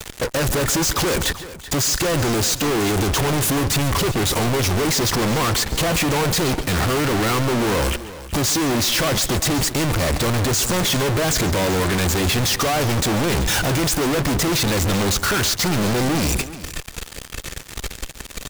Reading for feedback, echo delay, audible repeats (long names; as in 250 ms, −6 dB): repeats not evenly spaced, 139 ms, 2